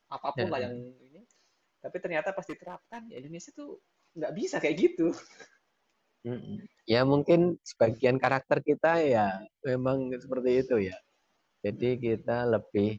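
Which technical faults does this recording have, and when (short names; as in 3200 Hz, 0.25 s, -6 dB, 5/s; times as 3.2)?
2.49–3.18 clipped -33 dBFS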